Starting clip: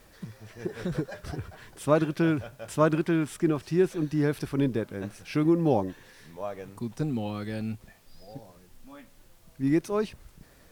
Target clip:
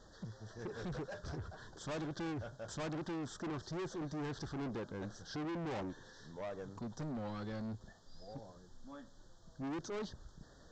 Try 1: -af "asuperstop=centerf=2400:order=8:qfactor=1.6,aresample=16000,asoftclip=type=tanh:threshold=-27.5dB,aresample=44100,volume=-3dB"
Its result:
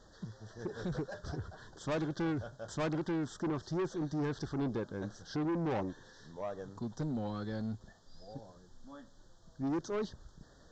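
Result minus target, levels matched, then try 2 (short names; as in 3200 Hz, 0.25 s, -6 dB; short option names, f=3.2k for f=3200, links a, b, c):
soft clip: distortion -4 dB
-af "asuperstop=centerf=2400:order=8:qfactor=1.6,aresample=16000,asoftclip=type=tanh:threshold=-35.5dB,aresample=44100,volume=-3dB"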